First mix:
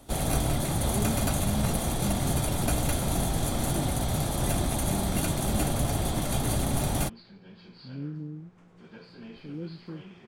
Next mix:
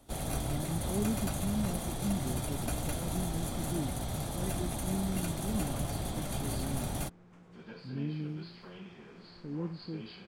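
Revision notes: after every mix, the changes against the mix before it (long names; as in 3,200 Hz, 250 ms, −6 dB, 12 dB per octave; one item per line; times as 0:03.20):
first sound −8.0 dB
second sound: entry −1.25 s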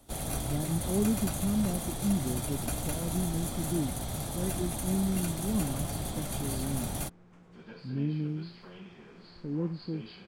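speech +5.0 dB
first sound: add high-shelf EQ 5,700 Hz +5 dB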